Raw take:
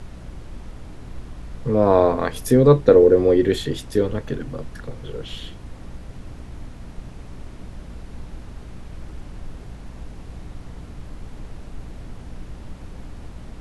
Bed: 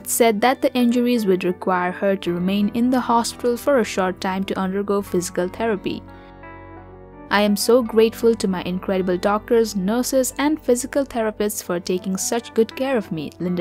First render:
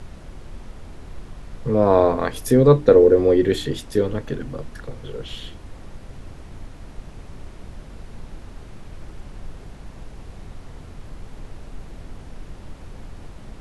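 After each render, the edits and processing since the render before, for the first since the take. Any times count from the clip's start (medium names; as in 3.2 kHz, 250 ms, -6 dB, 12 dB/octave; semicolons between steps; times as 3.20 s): de-hum 60 Hz, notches 5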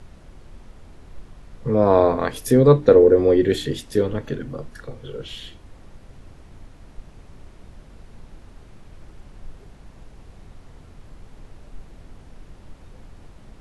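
noise print and reduce 6 dB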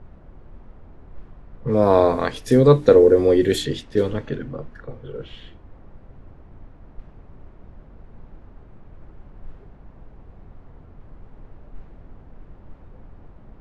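treble shelf 4.9 kHz +10 dB; level-controlled noise filter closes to 1.1 kHz, open at -14 dBFS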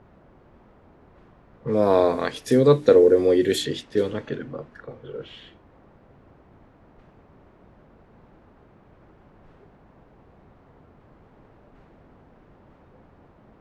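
dynamic bell 950 Hz, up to -4 dB, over -29 dBFS, Q 0.97; high-pass 240 Hz 6 dB/octave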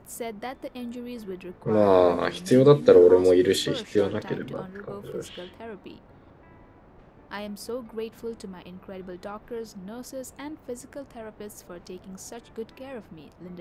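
add bed -18.5 dB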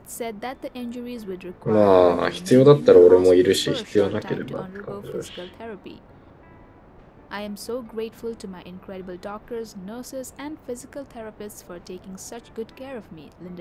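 trim +3.5 dB; peak limiter -2 dBFS, peak gain reduction 2 dB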